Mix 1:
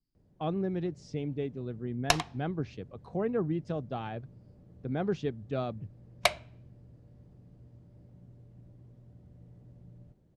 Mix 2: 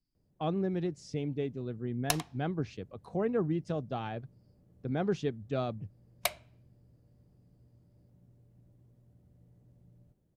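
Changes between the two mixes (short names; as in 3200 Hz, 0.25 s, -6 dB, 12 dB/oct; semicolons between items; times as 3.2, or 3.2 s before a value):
background -8.0 dB; master: remove air absorption 71 m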